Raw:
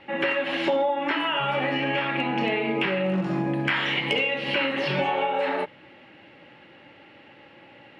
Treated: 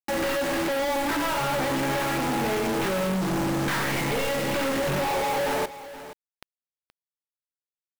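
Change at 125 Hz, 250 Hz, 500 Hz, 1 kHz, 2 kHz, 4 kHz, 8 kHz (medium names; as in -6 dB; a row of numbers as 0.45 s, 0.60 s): +1.5 dB, +0.5 dB, 0.0 dB, 0.0 dB, -3.5 dB, -3.5 dB, no reading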